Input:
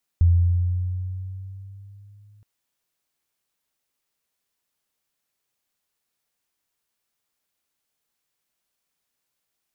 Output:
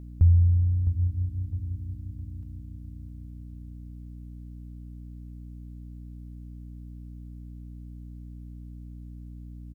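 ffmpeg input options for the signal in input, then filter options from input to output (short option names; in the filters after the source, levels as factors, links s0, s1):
-f lavfi -i "aevalsrc='pow(10,(-11.5-38.5*t/2.22)/20)*sin(2*PI*85.4*2.22/(3.5*log(2)/12)*(exp(3.5*log(2)/12*t/2.22)-1))':d=2.22:s=44100"
-af "aecho=1:1:660|1320|1980|2640|3300:0.316|0.136|0.0585|0.0251|0.0108,aeval=exprs='val(0)+0.01*(sin(2*PI*60*n/s)+sin(2*PI*2*60*n/s)/2+sin(2*PI*3*60*n/s)/3+sin(2*PI*4*60*n/s)/4+sin(2*PI*5*60*n/s)/5)':c=same"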